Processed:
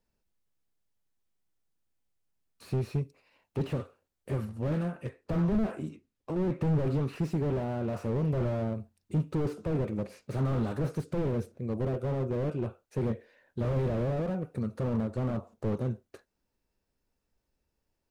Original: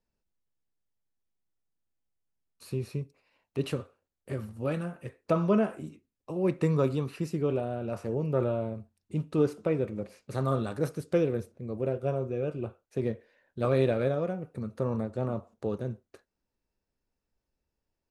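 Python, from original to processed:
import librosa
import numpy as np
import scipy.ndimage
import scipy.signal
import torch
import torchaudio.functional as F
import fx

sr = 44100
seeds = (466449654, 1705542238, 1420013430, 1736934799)

y = fx.high_shelf(x, sr, hz=10000.0, db=-12.0, at=(4.45, 7.14))
y = fx.slew_limit(y, sr, full_power_hz=9.3)
y = y * librosa.db_to_amplitude(3.5)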